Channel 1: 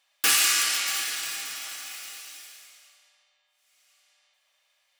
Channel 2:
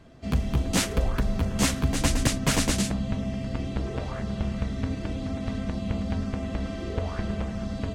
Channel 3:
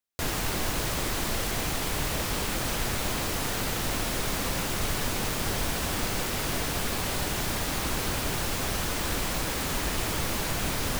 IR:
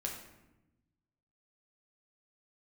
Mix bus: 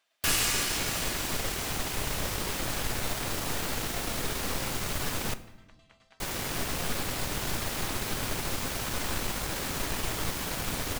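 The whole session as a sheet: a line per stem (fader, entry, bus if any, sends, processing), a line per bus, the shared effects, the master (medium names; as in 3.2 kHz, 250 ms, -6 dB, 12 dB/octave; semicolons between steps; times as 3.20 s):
-7.0 dB, 0.00 s, no send, none
-14.0 dB, 0.00 s, no send, high-pass 1.1 kHz 12 dB/octave; tremolo saw down 9.5 Hz, depth 75%
-4.0 dB, 0.05 s, muted 5.34–6.20 s, send -7.5 dB, one-sided wavefolder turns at -29 dBFS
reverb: on, RT60 0.95 s, pre-delay 7 ms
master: none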